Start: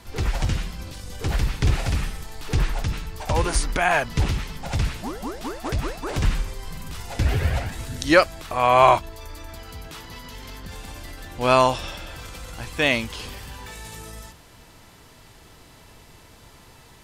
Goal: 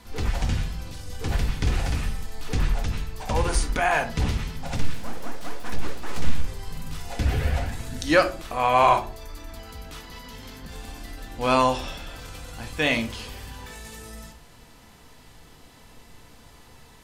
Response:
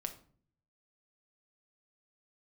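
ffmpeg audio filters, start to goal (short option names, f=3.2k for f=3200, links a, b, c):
-filter_complex "[0:a]asettb=1/sr,asplit=3[a][b][c];[a]atrim=end=4.774[d];[b]atrim=start=4.77:end=6.43,asetpts=PTS-STARTPTS,afade=t=in:d=0.004:c=qsin,afade=t=out:st=1.656:d=0.004:c=qsin,aeval=exprs='abs(val(0))':c=same[e];[c]atrim=start=6.426[f];[d][e]acrossfade=d=0.004:c1=hsin:c2=qsin[g];[g][f]acrossfade=d=0.004:c1=qsin:c2=hsin[h];[1:a]atrim=start_sample=2205,asetrate=57330,aresample=44100[i];[h][i]afir=irnorm=-1:irlink=0,aeval=exprs='0.531*(cos(1*acos(clip(val(0)/0.531,-1,1)))-cos(1*PI/2))+0.0188*(cos(5*acos(clip(val(0)/0.531,-1,1)))-cos(5*PI/2))':c=same"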